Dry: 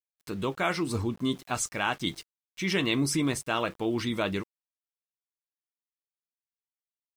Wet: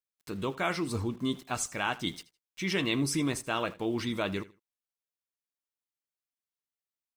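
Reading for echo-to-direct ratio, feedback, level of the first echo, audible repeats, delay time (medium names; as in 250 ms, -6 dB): -19.0 dB, 21%, -19.0 dB, 2, 80 ms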